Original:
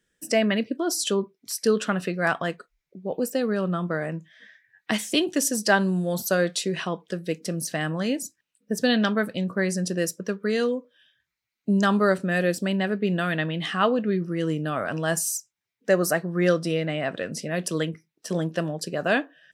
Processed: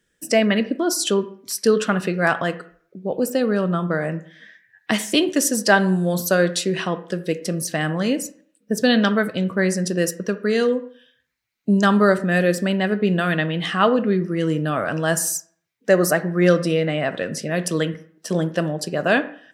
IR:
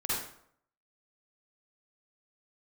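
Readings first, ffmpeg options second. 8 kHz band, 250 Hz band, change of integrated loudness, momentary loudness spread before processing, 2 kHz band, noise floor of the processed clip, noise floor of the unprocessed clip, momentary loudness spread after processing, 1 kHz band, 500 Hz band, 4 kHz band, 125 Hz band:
+4.0 dB, +5.0 dB, +4.5 dB, 9 LU, +4.5 dB, -68 dBFS, -84 dBFS, 9 LU, +4.5 dB, +5.0 dB, +4.0 dB, +5.0 dB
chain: -filter_complex "[0:a]asplit=2[s0][s1];[1:a]atrim=start_sample=2205,asetrate=52920,aresample=44100,lowpass=2700[s2];[s1][s2]afir=irnorm=-1:irlink=0,volume=0.141[s3];[s0][s3]amix=inputs=2:normalize=0,volume=1.58"

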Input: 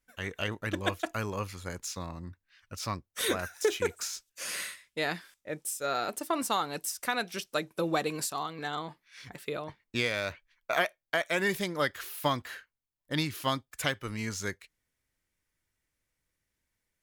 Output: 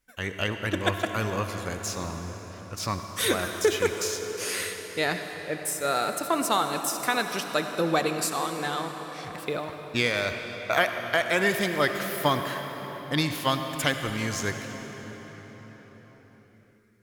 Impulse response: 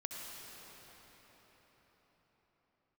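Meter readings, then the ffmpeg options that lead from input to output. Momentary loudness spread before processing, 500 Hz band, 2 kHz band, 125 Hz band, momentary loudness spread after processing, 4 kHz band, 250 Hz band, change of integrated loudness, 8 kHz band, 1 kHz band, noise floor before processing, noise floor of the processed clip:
10 LU, +5.5 dB, +5.5 dB, +5.5 dB, 12 LU, +5.5 dB, +5.5 dB, +5.0 dB, +5.0 dB, +5.5 dB, -84 dBFS, -54 dBFS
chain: -filter_complex "[0:a]asplit=2[s0][s1];[1:a]atrim=start_sample=2205[s2];[s1][s2]afir=irnorm=-1:irlink=0,volume=1.12[s3];[s0][s3]amix=inputs=2:normalize=0"

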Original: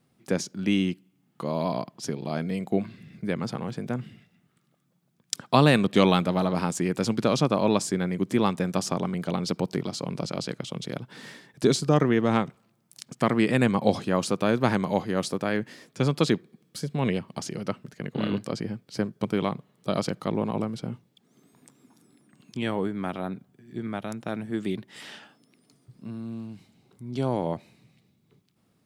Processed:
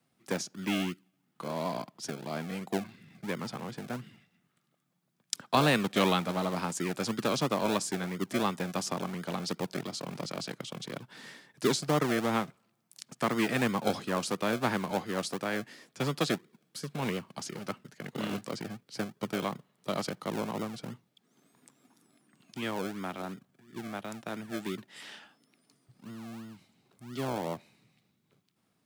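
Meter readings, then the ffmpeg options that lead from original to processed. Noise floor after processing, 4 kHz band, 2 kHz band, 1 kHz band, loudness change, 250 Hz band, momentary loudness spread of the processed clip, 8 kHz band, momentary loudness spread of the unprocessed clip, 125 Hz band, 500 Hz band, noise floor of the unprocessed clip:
-76 dBFS, -2.5 dB, -2.5 dB, -4.0 dB, -6.0 dB, -7.5 dB, 17 LU, -2.5 dB, 16 LU, -9.0 dB, -6.5 dB, -69 dBFS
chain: -filter_complex "[0:a]lowshelf=f=160:g=-10,acrossover=split=180|470|3500[s0][s1][s2][s3];[s1]acrusher=samples=37:mix=1:aa=0.000001:lfo=1:lforange=22.2:lforate=2.9[s4];[s0][s4][s2][s3]amix=inputs=4:normalize=0,volume=0.668"

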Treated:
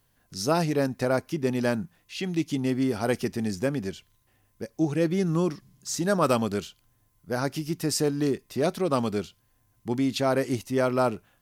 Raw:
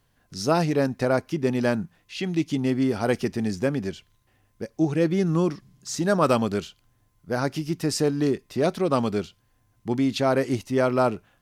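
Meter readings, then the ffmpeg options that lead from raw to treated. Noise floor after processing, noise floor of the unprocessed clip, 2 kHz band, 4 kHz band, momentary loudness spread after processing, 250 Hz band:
-68 dBFS, -67 dBFS, -2.0 dB, -1.0 dB, 10 LU, -2.5 dB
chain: -af "highshelf=f=8900:g=10.5,volume=0.75"

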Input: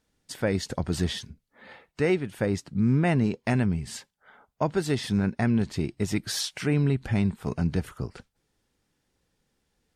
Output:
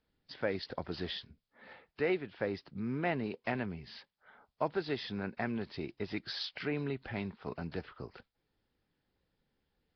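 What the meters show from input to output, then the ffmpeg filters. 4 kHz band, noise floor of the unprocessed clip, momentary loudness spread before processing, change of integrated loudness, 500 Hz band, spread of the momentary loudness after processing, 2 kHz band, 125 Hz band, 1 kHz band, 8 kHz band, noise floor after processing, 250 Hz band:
-7.0 dB, -76 dBFS, 8 LU, -10.5 dB, -7.0 dB, 15 LU, -5.5 dB, -16.5 dB, -5.5 dB, under -25 dB, -83 dBFS, -12.5 dB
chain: -filter_complex "[0:a]acrossover=split=310|3000[s0][s1][s2];[s0]acompressor=threshold=0.00112:ratio=1.5[s3];[s3][s1][s2]amix=inputs=3:normalize=0,volume=0.531" -ar 11025 -c:a nellymoser

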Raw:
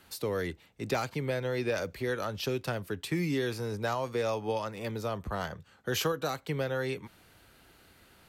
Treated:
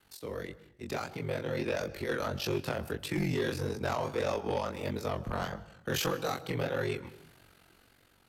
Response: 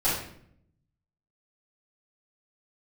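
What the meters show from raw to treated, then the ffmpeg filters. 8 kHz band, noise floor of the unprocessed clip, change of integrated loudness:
-1.0 dB, -61 dBFS, -1.0 dB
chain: -filter_complex "[0:a]aeval=exprs='val(0)*sin(2*PI*23*n/s)':c=same,dynaudnorm=f=560:g=5:m=2.51,asplit=2[s0][s1];[1:a]atrim=start_sample=2205,adelay=118[s2];[s1][s2]afir=irnorm=-1:irlink=0,volume=0.0282[s3];[s0][s3]amix=inputs=2:normalize=0,flanger=delay=19:depth=7.6:speed=1.6,aeval=exprs='0.2*(cos(1*acos(clip(val(0)/0.2,-1,1)))-cos(1*PI/2))+0.0316*(cos(5*acos(clip(val(0)/0.2,-1,1)))-cos(5*PI/2))':c=same,volume=0.501"

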